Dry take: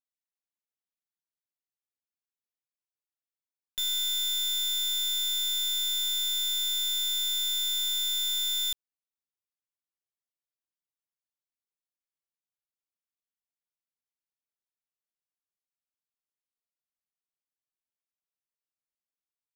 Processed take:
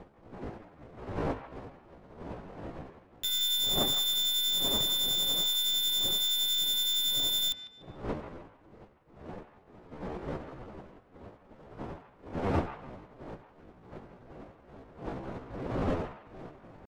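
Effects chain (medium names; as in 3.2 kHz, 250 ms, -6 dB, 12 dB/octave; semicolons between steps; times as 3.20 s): wind noise 530 Hz -39 dBFS; granular stretch 0.63×, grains 136 ms; on a send: feedback echo behind a band-pass 111 ms, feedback 32%, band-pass 1.6 kHz, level -8 dB; on the sum: tempo 0.73×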